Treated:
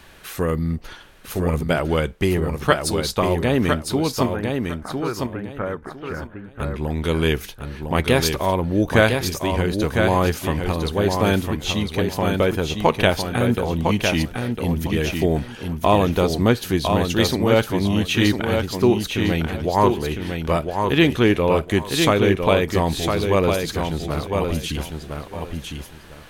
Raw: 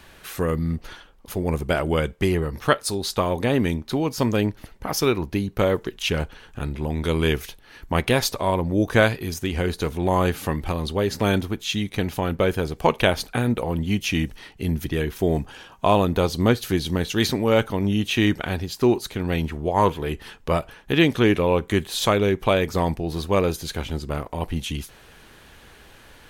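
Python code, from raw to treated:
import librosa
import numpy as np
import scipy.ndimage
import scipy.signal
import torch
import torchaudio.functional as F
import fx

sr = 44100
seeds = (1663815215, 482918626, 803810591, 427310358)

y = fx.ladder_lowpass(x, sr, hz=1800.0, resonance_pct=50, at=(4.26, 6.59))
y = fx.echo_feedback(y, sr, ms=1005, feedback_pct=22, wet_db=-5)
y = y * 10.0 ** (1.5 / 20.0)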